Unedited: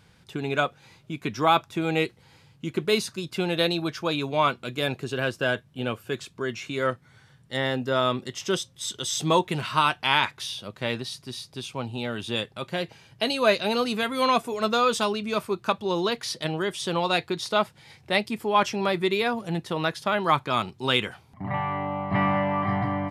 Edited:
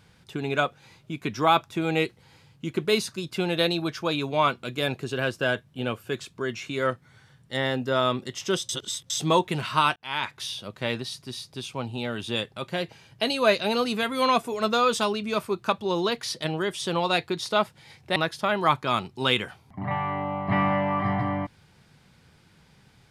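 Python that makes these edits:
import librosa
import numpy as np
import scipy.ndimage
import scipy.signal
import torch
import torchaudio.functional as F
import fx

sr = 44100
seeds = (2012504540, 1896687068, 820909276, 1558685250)

y = fx.edit(x, sr, fx.reverse_span(start_s=8.69, length_s=0.41),
    fx.fade_in_span(start_s=9.96, length_s=0.49),
    fx.cut(start_s=18.16, length_s=1.63), tone=tone)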